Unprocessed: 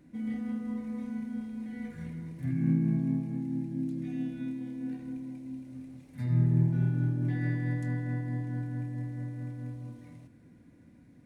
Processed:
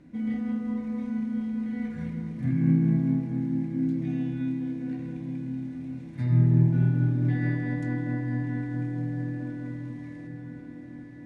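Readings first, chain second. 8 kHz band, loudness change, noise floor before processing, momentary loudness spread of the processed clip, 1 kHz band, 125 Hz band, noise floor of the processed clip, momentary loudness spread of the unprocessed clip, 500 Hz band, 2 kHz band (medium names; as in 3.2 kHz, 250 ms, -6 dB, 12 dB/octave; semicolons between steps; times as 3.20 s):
no reading, +4.5 dB, -57 dBFS, 15 LU, +5.0 dB, +4.5 dB, -42 dBFS, 14 LU, +5.5 dB, +5.0 dB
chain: distance through air 71 m; echo that smears into a reverb 1079 ms, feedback 63%, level -10.5 dB; trim +5 dB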